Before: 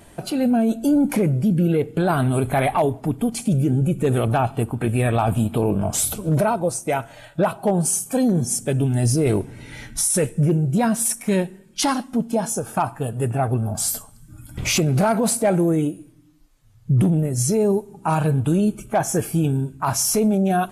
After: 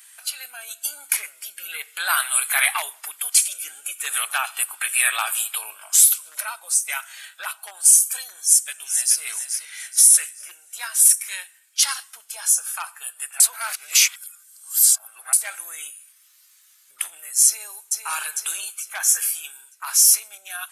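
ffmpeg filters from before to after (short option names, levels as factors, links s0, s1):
-filter_complex "[0:a]asplit=2[s0][s1];[s1]afade=t=in:st=8.36:d=0.01,afade=t=out:st=9.22:d=0.01,aecho=0:1:430|860|1290|1720|2150:0.421697|0.168679|0.0674714|0.0269886|0.0107954[s2];[s0][s2]amix=inputs=2:normalize=0,asplit=2[s3][s4];[s4]afade=t=in:st=17.46:d=0.01,afade=t=out:st=17.92:d=0.01,aecho=0:1:450|900|1350|1800|2250:0.530884|0.238898|0.107504|0.0483768|0.0217696[s5];[s3][s5]amix=inputs=2:normalize=0,asplit=3[s6][s7][s8];[s6]atrim=end=13.402[s9];[s7]atrim=start=13.398:end=15.332,asetpts=PTS-STARTPTS,areverse[s10];[s8]atrim=start=15.328[s11];[s9][s10]acrossfade=d=0.004:c1=hsin:c2=hsin[s12];[s12][s11]acrossfade=d=0.004:c1=hsin:c2=hsin,highpass=f=1400:w=0.5412,highpass=f=1400:w=1.3066,highshelf=f=5500:g=11.5,dynaudnorm=f=420:g=3:m=3.76,volume=0.891"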